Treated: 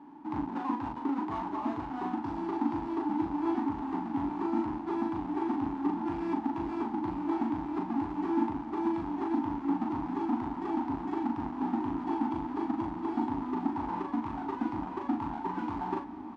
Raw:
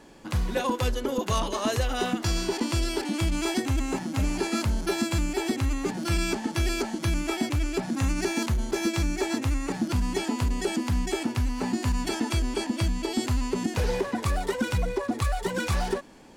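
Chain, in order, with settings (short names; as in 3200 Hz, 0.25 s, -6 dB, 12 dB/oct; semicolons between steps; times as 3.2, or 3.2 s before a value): half-waves squared off; vocal rider 0.5 s; double band-pass 510 Hz, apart 1.6 oct; air absorption 61 m; doubler 39 ms -4 dB; diffused feedback echo 1.352 s, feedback 65%, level -13 dB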